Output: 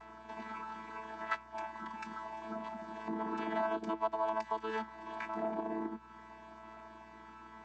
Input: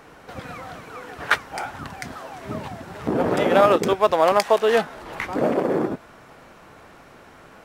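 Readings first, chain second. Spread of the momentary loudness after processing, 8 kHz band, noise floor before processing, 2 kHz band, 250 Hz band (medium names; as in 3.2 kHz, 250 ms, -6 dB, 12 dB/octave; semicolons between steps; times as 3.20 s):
17 LU, under -20 dB, -48 dBFS, -16.5 dB, -14.5 dB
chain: vocoder on a held chord bare fifth, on A3; resonant low shelf 670 Hz -6.5 dB, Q 3; compression 2:1, threshold -41 dBFS, peak gain reduction 15 dB; hum 60 Hz, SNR 27 dB; trim -1 dB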